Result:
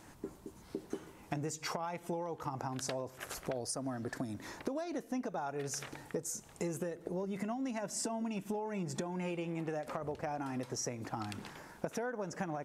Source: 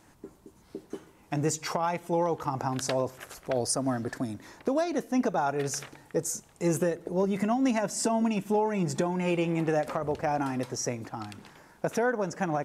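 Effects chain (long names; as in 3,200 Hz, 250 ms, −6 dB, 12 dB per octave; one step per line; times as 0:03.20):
downward compressor 16 to 1, threshold −37 dBFS, peak gain reduction 16.5 dB
level +2.5 dB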